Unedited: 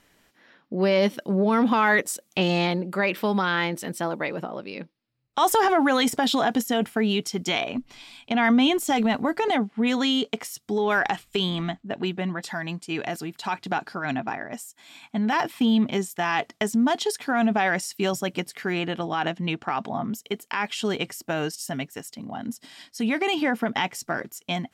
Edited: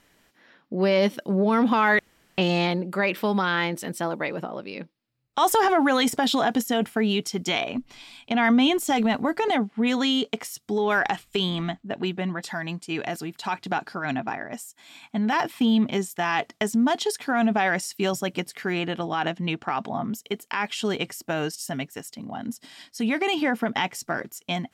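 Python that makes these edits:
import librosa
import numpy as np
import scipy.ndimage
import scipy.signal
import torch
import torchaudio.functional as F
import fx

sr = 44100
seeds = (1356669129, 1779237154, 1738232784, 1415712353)

y = fx.edit(x, sr, fx.room_tone_fill(start_s=1.99, length_s=0.39), tone=tone)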